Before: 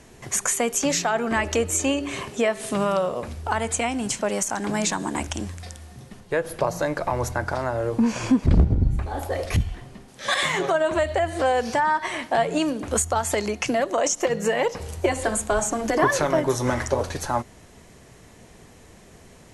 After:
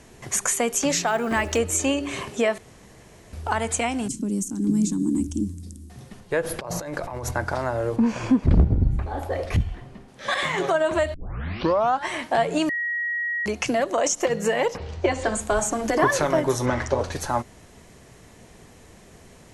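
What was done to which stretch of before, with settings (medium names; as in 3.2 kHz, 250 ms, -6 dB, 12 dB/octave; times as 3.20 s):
1.07–1.58 s: short-mantissa float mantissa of 4-bit
2.58–3.33 s: room tone
4.08–5.90 s: FFT filter 130 Hz 0 dB, 190 Hz +6 dB, 290 Hz +10 dB, 660 Hz -28 dB, 1.1 kHz -21 dB, 1.8 kHz -26 dB, 8.5 kHz -3 dB
6.43–7.31 s: compressor with a negative ratio -31 dBFS
7.96–10.58 s: treble shelf 4.2 kHz -10.5 dB
11.14 s: tape start 0.95 s
12.69–13.46 s: bleep 1.9 kHz -23.5 dBFS
14.76–15.40 s: low-pass 4.2 kHz -> 8.3 kHz 24 dB/octave
16.65–17.10 s: low-pass 4.3 kHz -> 7.3 kHz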